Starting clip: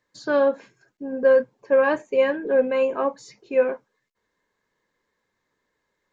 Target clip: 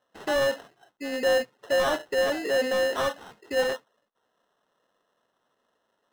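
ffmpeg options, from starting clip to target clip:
ffmpeg -i in.wav -filter_complex "[0:a]acrusher=samples=19:mix=1:aa=0.000001,asplit=2[link_01][link_02];[link_02]highpass=frequency=720:poles=1,volume=20dB,asoftclip=type=tanh:threshold=-8dB[link_03];[link_01][link_03]amix=inputs=2:normalize=0,lowpass=frequency=3800:poles=1,volume=-6dB,volume=-8.5dB" out.wav

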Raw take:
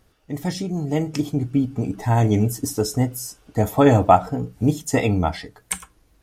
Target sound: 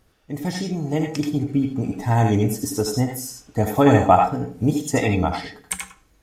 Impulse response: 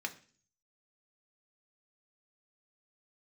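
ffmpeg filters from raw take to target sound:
-filter_complex "[0:a]asplit=2[link_01][link_02];[1:a]atrim=start_sample=2205,lowshelf=frequency=140:gain=-11,adelay=79[link_03];[link_02][link_03]afir=irnorm=-1:irlink=0,volume=-3dB[link_04];[link_01][link_04]amix=inputs=2:normalize=0,volume=-1dB"

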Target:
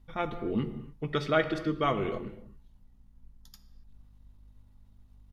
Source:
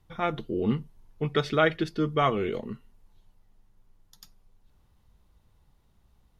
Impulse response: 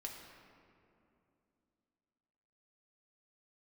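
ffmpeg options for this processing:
-filter_complex "[0:a]aeval=exprs='val(0)+0.00126*(sin(2*PI*50*n/s)+sin(2*PI*2*50*n/s)/2+sin(2*PI*3*50*n/s)/3+sin(2*PI*4*50*n/s)/4+sin(2*PI*5*50*n/s)/5)':channel_layout=same,atempo=1.2,asplit=2[link_01][link_02];[1:a]atrim=start_sample=2205,afade=type=out:start_time=0.34:duration=0.01,atrim=end_sample=15435,lowshelf=frequency=86:gain=11.5[link_03];[link_02][link_03]afir=irnorm=-1:irlink=0,volume=1.5dB[link_04];[link_01][link_04]amix=inputs=2:normalize=0,volume=-8dB"

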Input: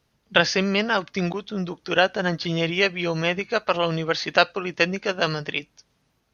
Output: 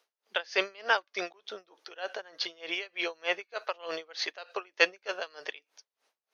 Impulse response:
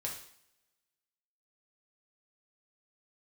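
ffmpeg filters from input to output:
-af "highpass=frequency=450:width=0.5412,highpass=frequency=450:width=1.3066,aeval=exprs='val(0)*pow(10,-28*(0.5-0.5*cos(2*PI*3.3*n/s))/20)':channel_layout=same"

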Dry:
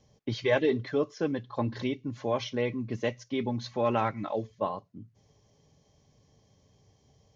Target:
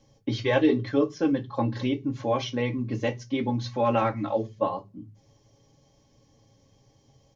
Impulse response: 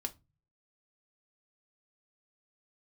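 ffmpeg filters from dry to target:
-filter_complex "[0:a]aecho=1:1:7.2:0.32[link_01];[1:a]atrim=start_sample=2205,asetrate=57330,aresample=44100[link_02];[link_01][link_02]afir=irnorm=-1:irlink=0,volume=5.5dB"

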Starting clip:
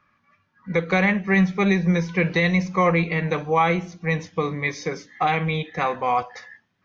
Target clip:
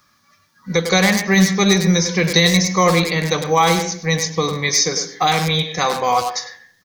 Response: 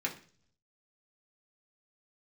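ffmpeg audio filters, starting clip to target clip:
-filter_complex "[0:a]asplit=2[link_01][link_02];[link_02]adelay=100,highpass=300,lowpass=3400,asoftclip=type=hard:threshold=-17dB,volume=-7dB[link_03];[link_01][link_03]amix=inputs=2:normalize=0,aexciter=amount=11.9:drive=2.3:freq=3800,asplit=2[link_04][link_05];[1:a]atrim=start_sample=2205,lowpass=2900,adelay=137[link_06];[link_05][link_06]afir=irnorm=-1:irlink=0,volume=-18.5dB[link_07];[link_04][link_07]amix=inputs=2:normalize=0,volume=4dB"

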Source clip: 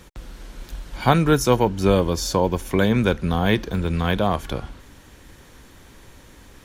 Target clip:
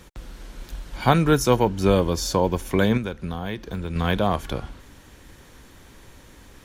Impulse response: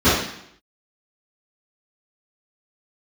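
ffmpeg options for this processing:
-filter_complex "[0:a]asettb=1/sr,asplit=3[link_01][link_02][link_03];[link_01]atrim=end=2.974[link_04];[link_02]atrim=start=2.97:end=3.96,asetpts=PTS-STARTPTS,afade=type=in:duration=0.004:curve=qsin,afade=type=out:start_time=0.986:duration=0.004:curve=qsin,acompressor=threshold=-25dB:ratio=6[link_05];[link_03]atrim=start=3.956[link_06];[link_04][link_05]acrossfade=duration=0.004:curve1=hsin:curve2=qsin[link_07];[link_07][link_06]acrossfade=duration=0.004:curve1=qsin:curve2=hsin,volume=-1dB"

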